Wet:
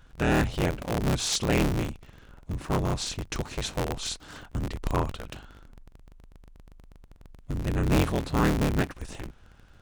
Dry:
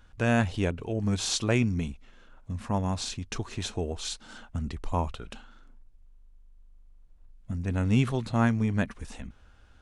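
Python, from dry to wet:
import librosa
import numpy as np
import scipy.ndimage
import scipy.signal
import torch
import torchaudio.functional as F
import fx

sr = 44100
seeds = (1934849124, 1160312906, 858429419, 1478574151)

y = fx.cycle_switch(x, sr, every=3, mode='inverted')
y = 10.0 ** (-15.0 / 20.0) * np.tanh(y / 10.0 ** (-15.0 / 20.0))
y = y * librosa.db_to_amplitude(2.0)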